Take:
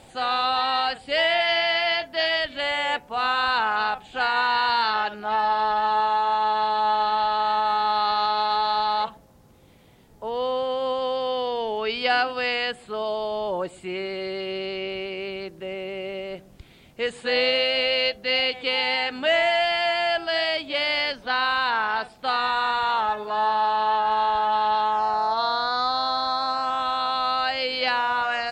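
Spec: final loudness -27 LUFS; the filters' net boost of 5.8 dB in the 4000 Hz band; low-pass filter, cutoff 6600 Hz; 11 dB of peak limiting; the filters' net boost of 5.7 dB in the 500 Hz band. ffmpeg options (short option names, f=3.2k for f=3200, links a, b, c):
-af "lowpass=6.6k,equalizer=f=500:t=o:g=7,equalizer=f=4k:t=o:g=8,volume=-2dB,alimiter=limit=-18.5dB:level=0:latency=1"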